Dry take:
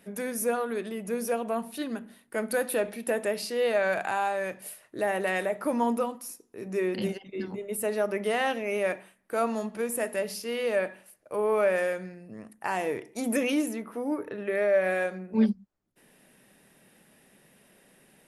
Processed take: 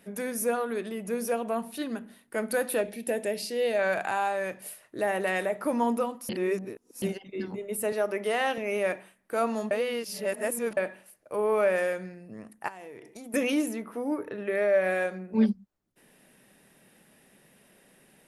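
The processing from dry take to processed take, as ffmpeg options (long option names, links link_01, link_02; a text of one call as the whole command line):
ffmpeg -i in.wav -filter_complex "[0:a]asettb=1/sr,asplit=3[link_01][link_02][link_03];[link_01]atrim=end=2.814[link_04];[link_02]atrim=start=2.81:end=3.79,asetpts=PTS-STARTPTS,afade=type=in:duration=0.004:curve=qsin,afade=type=out:start_time=0.976:duration=0.004:curve=qsin,equalizer=frequency=1200:width_type=o:width=0.76:gain=-12[link_05];[link_03]atrim=start=3.786[link_06];[link_04][link_05]acrossfade=duration=0.004:curve1=hsin:curve2=qsin[link_07];[link_07][link_06]acrossfade=duration=0.004:curve1=qsin:curve2=hsin,asettb=1/sr,asplit=3[link_08][link_09][link_10];[link_08]atrim=end=7.924[link_11];[link_09]atrim=start=7.92:end=8.58,asetpts=PTS-STARTPTS,afade=type=in:duration=0.004:curve=qsin,afade=type=out:start_time=0.656:duration=0.004:curve=qsin,highpass=250[link_12];[link_10]atrim=start=8.576[link_13];[link_11][link_12]acrossfade=duration=0.004:curve1=hsin:curve2=qsin[link_14];[link_14][link_13]acrossfade=duration=0.004:curve1=qsin:curve2=hsin,asettb=1/sr,asplit=3[link_15][link_16][link_17];[link_15]atrim=end=12.684[link_18];[link_16]atrim=start=12.68:end=13.34,asetpts=PTS-STARTPTS,afade=type=in:duration=0.004:curve=qsin,afade=type=out:start_time=0.656:duration=0.004:curve=qsin,acompressor=threshold=-40dB:ratio=12:attack=3.2:release=140:knee=1:detection=peak[link_19];[link_17]atrim=start=13.336[link_20];[link_18][link_19]acrossfade=duration=0.004:curve1=hsin:curve2=qsin[link_21];[link_21][link_20]acrossfade=duration=0.004:curve1=qsin:curve2=hsin,asplit=5[link_22][link_23][link_24][link_25][link_26];[link_22]atrim=end=6.292[link_27];[link_23]atrim=start=6.288:end=7.022,asetpts=PTS-STARTPTS,areverse[link_28];[link_24]atrim=start=7.018:end=9.712[link_29];[link_25]atrim=start=9.708:end=10.772,asetpts=PTS-STARTPTS,areverse[link_30];[link_26]atrim=start=10.768[link_31];[link_27][link_28]acrossfade=duration=0.004:curve1=hsin:curve2=hsin[link_32];[link_32][link_29]acrossfade=duration=0.004:curve1=hsin:curve2=hsin[link_33];[link_33][link_30]acrossfade=duration=0.004:curve1=hsin:curve2=hsin[link_34];[link_34][link_31]acrossfade=duration=0.004:curve1=hsin:curve2=hsin" out.wav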